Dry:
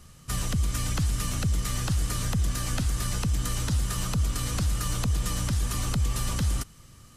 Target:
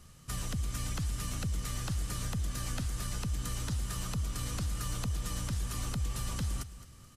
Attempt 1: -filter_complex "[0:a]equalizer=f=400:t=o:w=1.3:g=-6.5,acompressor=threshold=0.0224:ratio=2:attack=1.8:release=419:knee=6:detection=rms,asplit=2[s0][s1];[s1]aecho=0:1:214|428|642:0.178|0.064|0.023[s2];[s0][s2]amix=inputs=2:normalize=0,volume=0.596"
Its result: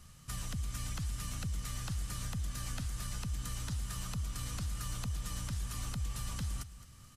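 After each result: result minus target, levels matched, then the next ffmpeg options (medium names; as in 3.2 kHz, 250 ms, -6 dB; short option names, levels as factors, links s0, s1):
500 Hz band -4.5 dB; compression: peak gain reduction +3 dB
-filter_complex "[0:a]acompressor=threshold=0.0224:ratio=2:attack=1.8:release=419:knee=6:detection=rms,asplit=2[s0][s1];[s1]aecho=0:1:214|428|642:0.178|0.064|0.023[s2];[s0][s2]amix=inputs=2:normalize=0,volume=0.596"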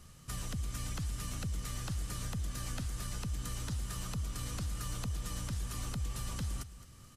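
compression: peak gain reduction +3 dB
-filter_complex "[0:a]acompressor=threshold=0.0473:ratio=2:attack=1.8:release=419:knee=6:detection=rms,asplit=2[s0][s1];[s1]aecho=0:1:214|428|642:0.178|0.064|0.023[s2];[s0][s2]amix=inputs=2:normalize=0,volume=0.596"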